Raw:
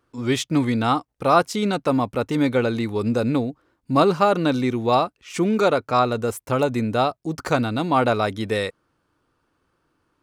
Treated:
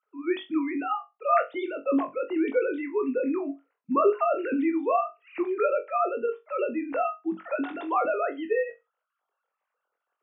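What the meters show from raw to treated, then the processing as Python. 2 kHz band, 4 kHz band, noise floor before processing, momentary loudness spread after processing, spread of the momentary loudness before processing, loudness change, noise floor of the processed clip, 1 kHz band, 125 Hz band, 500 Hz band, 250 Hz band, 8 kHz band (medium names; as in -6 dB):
-7.0 dB, under -15 dB, -72 dBFS, 7 LU, 6 LU, -6.0 dB, -84 dBFS, -6.0 dB, under -30 dB, -4.5 dB, -7.0 dB, under -40 dB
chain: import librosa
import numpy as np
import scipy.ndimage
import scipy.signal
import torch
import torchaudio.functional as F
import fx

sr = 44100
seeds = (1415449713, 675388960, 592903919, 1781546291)

y = fx.sine_speech(x, sr)
y = fx.room_flutter(y, sr, wall_m=3.7, rt60_s=0.21)
y = y * librosa.db_to_amplitude(-7.0)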